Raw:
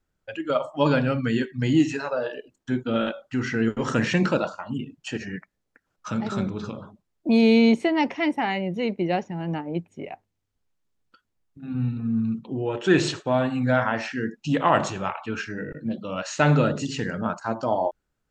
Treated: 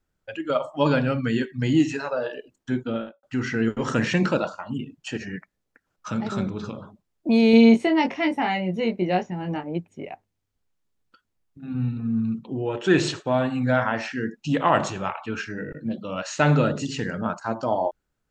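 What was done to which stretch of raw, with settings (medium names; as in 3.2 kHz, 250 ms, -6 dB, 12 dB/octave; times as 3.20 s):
2.78–3.23 s: studio fade out
7.51–9.64 s: doubling 22 ms -5 dB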